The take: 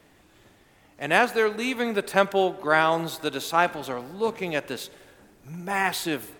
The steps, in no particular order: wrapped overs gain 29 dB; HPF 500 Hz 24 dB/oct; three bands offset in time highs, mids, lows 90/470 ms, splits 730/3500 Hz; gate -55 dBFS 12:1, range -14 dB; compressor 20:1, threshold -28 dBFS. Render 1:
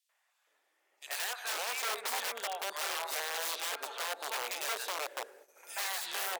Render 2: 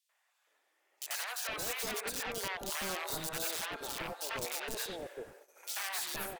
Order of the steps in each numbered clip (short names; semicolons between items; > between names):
three bands offset in time > compressor > wrapped overs > HPF > gate; HPF > compressor > wrapped overs > three bands offset in time > gate